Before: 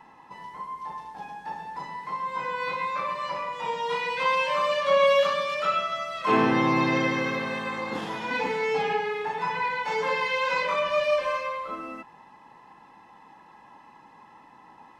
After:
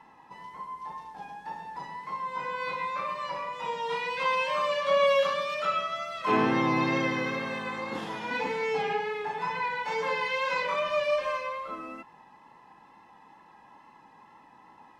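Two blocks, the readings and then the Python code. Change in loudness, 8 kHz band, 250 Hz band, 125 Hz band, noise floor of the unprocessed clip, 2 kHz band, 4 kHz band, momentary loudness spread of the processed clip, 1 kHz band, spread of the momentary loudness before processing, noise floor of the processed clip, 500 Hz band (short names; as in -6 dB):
-3.0 dB, -3.0 dB, -3.0 dB, -3.0 dB, -53 dBFS, -3.0 dB, -3.0 dB, 15 LU, -3.0 dB, 15 LU, -56 dBFS, -3.0 dB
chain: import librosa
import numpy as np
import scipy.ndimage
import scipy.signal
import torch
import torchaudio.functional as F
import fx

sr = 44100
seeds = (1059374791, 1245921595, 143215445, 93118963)

y = fx.wow_flutter(x, sr, seeds[0], rate_hz=2.1, depth_cents=26.0)
y = F.gain(torch.from_numpy(y), -3.0).numpy()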